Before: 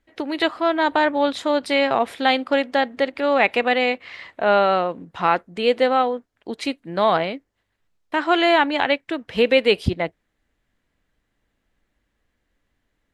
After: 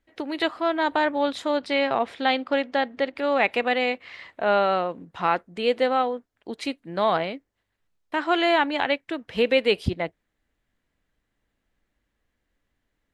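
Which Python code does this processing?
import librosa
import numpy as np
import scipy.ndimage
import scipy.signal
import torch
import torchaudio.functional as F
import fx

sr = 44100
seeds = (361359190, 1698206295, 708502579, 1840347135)

y = fx.lowpass(x, sr, hz=5900.0, slope=12, at=(1.57, 3.16))
y = y * librosa.db_to_amplitude(-4.0)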